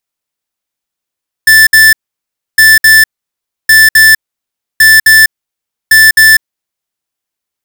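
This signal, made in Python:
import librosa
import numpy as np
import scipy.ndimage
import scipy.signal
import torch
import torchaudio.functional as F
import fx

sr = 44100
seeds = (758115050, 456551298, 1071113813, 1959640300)

y = fx.beep_pattern(sr, wave='square', hz=1760.0, on_s=0.2, off_s=0.06, beeps=2, pause_s=0.65, groups=5, level_db=-3.0)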